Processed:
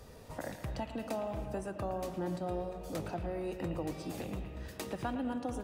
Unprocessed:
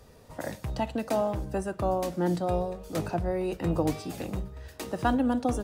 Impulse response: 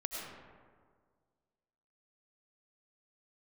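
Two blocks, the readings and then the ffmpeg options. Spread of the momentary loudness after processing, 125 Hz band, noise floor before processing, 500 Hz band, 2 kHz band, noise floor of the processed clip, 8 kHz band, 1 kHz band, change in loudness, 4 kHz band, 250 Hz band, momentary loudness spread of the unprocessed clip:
6 LU, −8.5 dB, −53 dBFS, −8.5 dB, −7.5 dB, −51 dBFS, −7.0 dB, −9.5 dB, −9.0 dB, −6.5 dB, −9.0 dB, 11 LU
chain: -filter_complex "[0:a]acompressor=threshold=-41dB:ratio=2.5,asplit=2[link_01][link_02];[link_02]lowpass=frequency=3000:width_type=q:width=2.2[link_03];[1:a]atrim=start_sample=2205,adelay=112[link_04];[link_03][link_04]afir=irnorm=-1:irlink=0,volume=-10.5dB[link_05];[link_01][link_05]amix=inputs=2:normalize=0,volume=1dB"

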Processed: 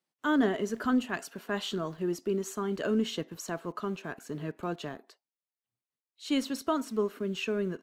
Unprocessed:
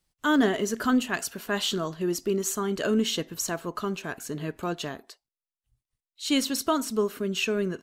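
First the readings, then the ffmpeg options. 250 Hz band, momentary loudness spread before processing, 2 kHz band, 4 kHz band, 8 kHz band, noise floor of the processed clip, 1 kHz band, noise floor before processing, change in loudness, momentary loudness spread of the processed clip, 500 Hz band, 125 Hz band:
−3.5 dB, 9 LU, −5.5 dB, −8.5 dB, −12.0 dB, below −85 dBFS, −4.5 dB, below −85 dBFS, −4.5 dB, 10 LU, −3.5 dB, −3.5 dB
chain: -filter_complex "[0:a]highshelf=frequency=3400:gain=-10.5,acrossover=split=180|4700[link_01][link_02][link_03];[link_01]aeval=exprs='val(0)*gte(abs(val(0)),0.00316)':channel_layout=same[link_04];[link_04][link_02][link_03]amix=inputs=3:normalize=0,volume=-3.5dB"

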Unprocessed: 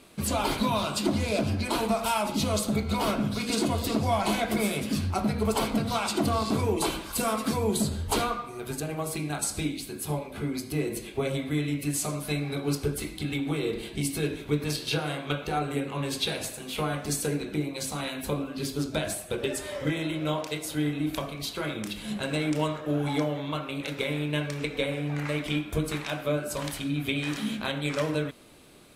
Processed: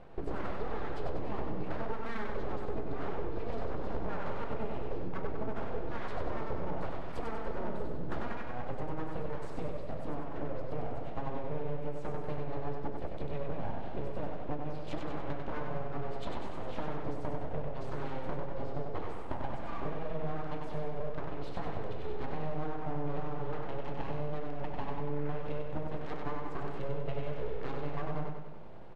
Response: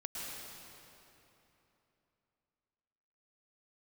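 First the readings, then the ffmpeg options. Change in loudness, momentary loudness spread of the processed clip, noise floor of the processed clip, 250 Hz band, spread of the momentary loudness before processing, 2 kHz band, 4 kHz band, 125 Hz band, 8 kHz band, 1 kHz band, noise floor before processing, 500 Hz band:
−10.5 dB, 2 LU, −33 dBFS, −12.5 dB, 6 LU, −12.5 dB, −22.0 dB, −9.0 dB, below −30 dB, −7.5 dB, −41 dBFS, −7.0 dB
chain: -filter_complex "[0:a]bandpass=frequency=230:width_type=q:width=0.51:csg=0,acompressor=threshold=-40dB:ratio=6,aeval=exprs='abs(val(0))':channel_layout=same,aemphasis=mode=reproduction:type=75fm,asplit=2[link_01][link_02];[link_02]aecho=0:1:96|192|288|384|480|576|672|768:0.596|0.334|0.187|0.105|0.0586|0.0328|0.0184|0.0103[link_03];[link_01][link_03]amix=inputs=2:normalize=0,volume=6.5dB"

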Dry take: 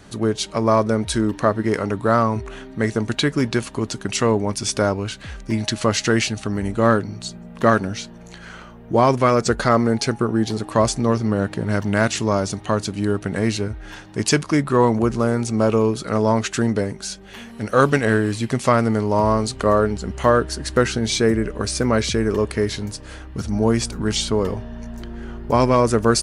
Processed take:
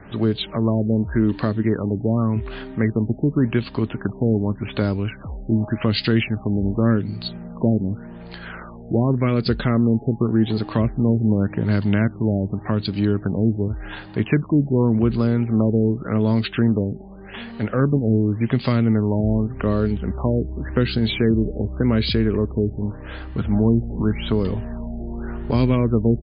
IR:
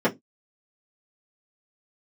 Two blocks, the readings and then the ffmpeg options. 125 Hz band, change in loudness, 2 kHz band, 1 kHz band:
+3.5 dB, −1.0 dB, −6.5 dB, −11.5 dB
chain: -filter_complex "[0:a]acrossover=split=340|2500[link_01][link_02][link_03];[link_02]acompressor=threshold=-33dB:ratio=8[link_04];[link_01][link_04][link_03]amix=inputs=3:normalize=0,aresample=22050,aresample=44100,afftfilt=real='re*lt(b*sr/1024,840*pow(5100/840,0.5+0.5*sin(2*PI*0.87*pts/sr)))':imag='im*lt(b*sr/1024,840*pow(5100/840,0.5+0.5*sin(2*PI*0.87*pts/sr)))':win_size=1024:overlap=0.75,volume=3.5dB"

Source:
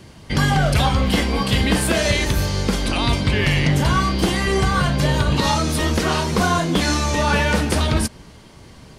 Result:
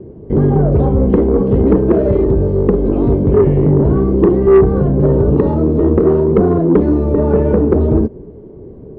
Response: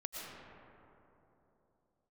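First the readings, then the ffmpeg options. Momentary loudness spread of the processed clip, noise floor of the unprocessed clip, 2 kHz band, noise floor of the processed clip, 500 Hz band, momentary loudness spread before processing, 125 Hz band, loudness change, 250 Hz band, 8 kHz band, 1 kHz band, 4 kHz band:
3 LU, −44 dBFS, below −15 dB, −35 dBFS, +12.5 dB, 3 LU, +5.5 dB, +6.5 dB, +9.0 dB, below −40 dB, −4.5 dB, below −30 dB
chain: -af "lowpass=frequency=410:width_type=q:width=4.9,acontrast=78,volume=-1dB"

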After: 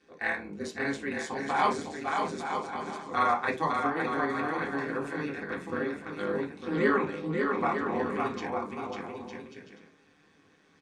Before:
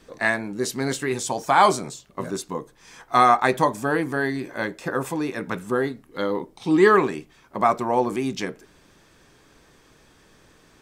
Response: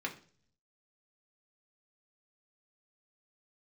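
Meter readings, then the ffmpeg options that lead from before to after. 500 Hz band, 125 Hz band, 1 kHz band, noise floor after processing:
−8.0 dB, −8.0 dB, −8.0 dB, −63 dBFS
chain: -filter_complex "[0:a]lowpass=frequency=9600:width=0.5412,lowpass=frequency=9600:width=1.3066,aecho=1:1:550|907.5|1140|1291|1389:0.631|0.398|0.251|0.158|0.1,tremolo=f=150:d=0.974[link_01];[1:a]atrim=start_sample=2205,atrim=end_sample=3528[link_02];[link_01][link_02]afir=irnorm=-1:irlink=0,volume=-7.5dB"

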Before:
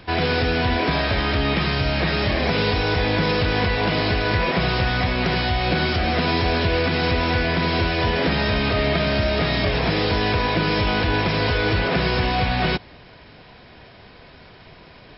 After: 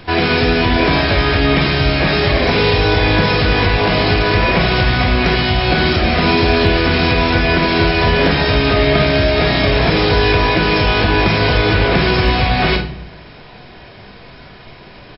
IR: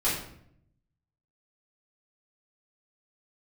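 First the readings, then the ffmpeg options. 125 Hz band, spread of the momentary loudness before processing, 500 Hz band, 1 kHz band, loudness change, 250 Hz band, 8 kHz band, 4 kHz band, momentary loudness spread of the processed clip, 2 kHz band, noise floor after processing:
+6.5 dB, 1 LU, +7.5 dB, +6.5 dB, +7.0 dB, +7.0 dB, can't be measured, +7.0 dB, 1 LU, +7.0 dB, −38 dBFS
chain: -filter_complex "[0:a]aecho=1:1:21|51:0.168|0.316,asplit=2[link_01][link_02];[1:a]atrim=start_sample=2205[link_03];[link_02][link_03]afir=irnorm=-1:irlink=0,volume=-15dB[link_04];[link_01][link_04]amix=inputs=2:normalize=0,asoftclip=type=hard:threshold=-6dB,volume=4.5dB"

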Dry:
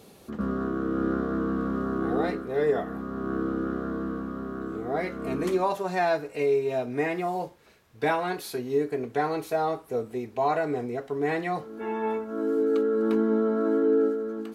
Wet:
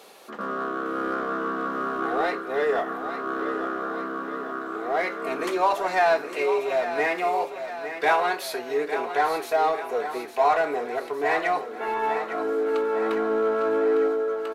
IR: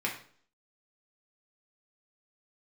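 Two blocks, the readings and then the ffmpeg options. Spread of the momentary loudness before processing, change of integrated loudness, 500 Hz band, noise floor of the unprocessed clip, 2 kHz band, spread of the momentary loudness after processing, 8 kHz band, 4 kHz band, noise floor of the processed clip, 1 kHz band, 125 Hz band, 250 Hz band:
9 LU, +2.0 dB, +2.0 dB, −52 dBFS, +7.5 dB, 8 LU, +4.5 dB, +6.5 dB, −37 dBFS, +6.5 dB, below −10 dB, −5.5 dB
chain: -filter_complex "[0:a]highpass=680,highshelf=frequency=4500:gain=-7.5,asplit=2[link_01][link_02];[link_02]asoftclip=type=hard:threshold=-34dB,volume=-6dB[link_03];[link_01][link_03]amix=inputs=2:normalize=0,aecho=1:1:855|1710|2565|3420|4275|5130:0.316|0.177|0.0992|0.0555|0.0311|0.0174,volume=6dB"

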